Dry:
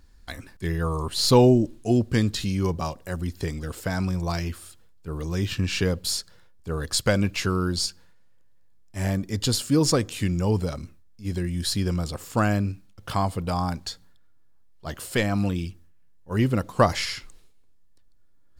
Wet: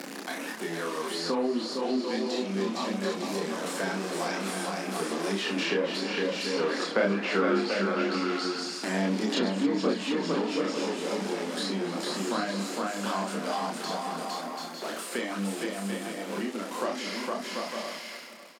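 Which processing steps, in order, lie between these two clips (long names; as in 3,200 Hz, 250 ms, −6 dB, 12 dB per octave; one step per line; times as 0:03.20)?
converter with a step at zero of −24.5 dBFS
source passing by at 0:07.62, 6 m/s, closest 8 metres
Butterworth high-pass 210 Hz 48 dB per octave
double-tracking delay 36 ms −5.5 dB
on a send: bouncing-ball delay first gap 460 ms, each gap 0.6×, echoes 5
on the sum: treble cut that deepens with the level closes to 2,000 Hz, closed at −21.5 dBFS
multi-voice chorus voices 4, 1.2 Hz, delay 28 ms, depth 3 ms
repeating echo 272 ms, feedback 36%, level −18.5 dB
multiband upward and downward compressor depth 70%
level +4 dB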